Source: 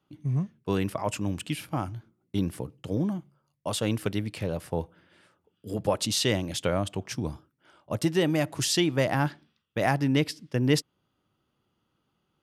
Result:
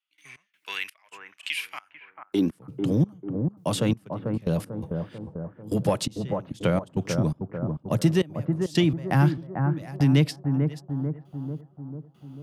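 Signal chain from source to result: low shelf 100 Hz +5.5 dB; in parallel at -10 dB: hard clip -22 dBFS, distortion -11 dB; on the sum: high-pass sweep 2300 Hz -> 140 Hz, 1.76–2.65; step gate ".x.xx...xx.." 84 bpm -24 dB; analogue delay 0.443 s, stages 4096, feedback 46%, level -7 dB; three-band squash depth 40%

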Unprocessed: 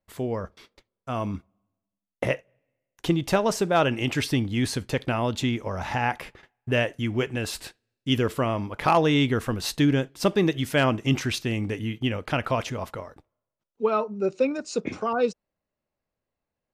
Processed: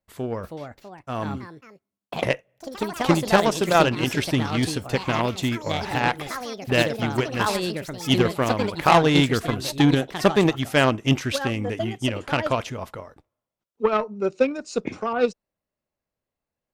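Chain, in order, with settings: echoes that change speed 0.361 s, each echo +4 st, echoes 3, each echo -6 dB; added harmonics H 7 -23 dB, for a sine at -6 dBFS; gain +4.5 dB

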